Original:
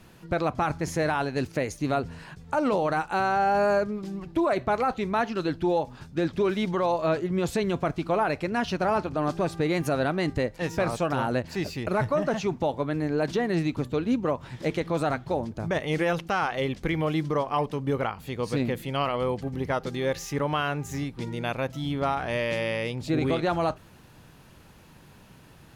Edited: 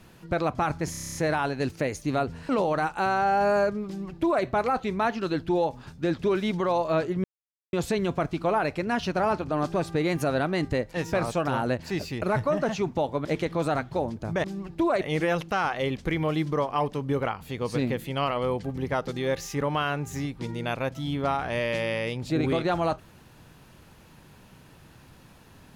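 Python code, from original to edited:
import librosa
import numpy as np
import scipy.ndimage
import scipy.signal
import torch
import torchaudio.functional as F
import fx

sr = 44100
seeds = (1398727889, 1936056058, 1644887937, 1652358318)

y = fx.edit(x, sr, fx.stutter(start_s=0.91, slice_s=0.03, count=9),
    fx.cut(start_s=2.25, length_s=0.38),
    fx.duplicate(start_s=4.01, length_s=0.57, to_s=15.79),
    fx.insert_silence(at_s=7.38, length_s=0.49),
    fx.cut(start_s=12.9, length_s=1.7), tone=tone)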